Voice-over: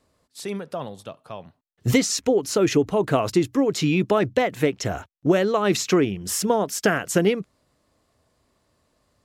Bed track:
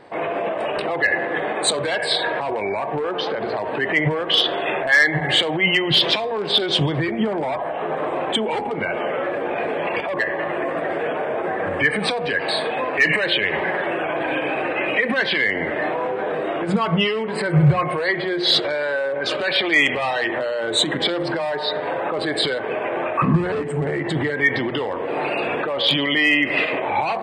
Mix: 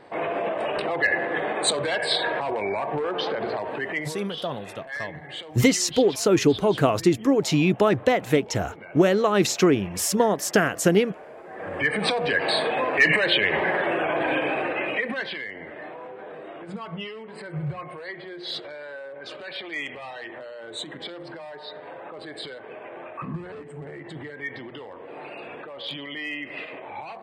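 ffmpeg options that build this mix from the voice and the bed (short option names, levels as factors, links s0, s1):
-filter_complex "[0:a]adelay=3700,volume=1.06[s0];[1:a]volume=5.62,afade=t=out:st=3.44:d=0.82:silence=0.158489,afade=t=in:st=11.48:d=0.67:silence=0.125893,afade=t=out:st=14.32:d=1.13:silence=0.188365[s1];[s0][s1]amix=inputs=2:normalize=0"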